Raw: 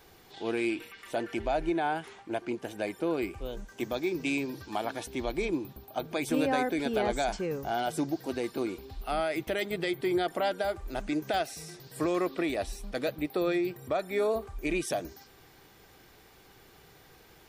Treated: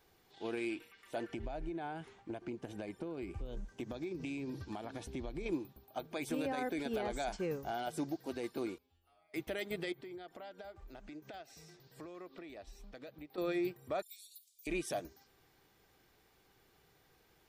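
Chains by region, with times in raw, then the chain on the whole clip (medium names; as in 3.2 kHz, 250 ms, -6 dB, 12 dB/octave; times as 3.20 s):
1.29–5.46 s: low-pass 9.9 kHz + bass shelf 290 Hz +11 dB + compression 10:1, threshold -31 dBFS
8.78–9.34 s: compression 10:1, threshold -40 dBFS + inharmonic resonator 84 Hz, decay 0.83 s, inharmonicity 0.002
9.92–13.38 s: peaking EQ 10 kHz -15 dB 0.49 oct + compression 4:1, threshold -39 dBFS
14.02–14.67 s: inverse Chebyshev high-pass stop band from 1.5 kHz, stop band 50 dB + tilt EQ +2.5 dB/octave + comb 4.2 ms, depth 71%
whole clip: peak limiter -23.5 dBFS; upward expansion 1.5:1, over -47 dBFS; trim -3 dB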